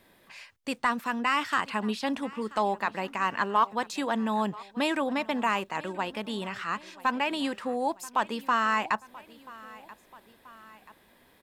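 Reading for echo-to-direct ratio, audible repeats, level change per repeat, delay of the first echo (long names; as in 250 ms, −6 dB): −19.5 dB, 2, −5.0 dB, 983 ms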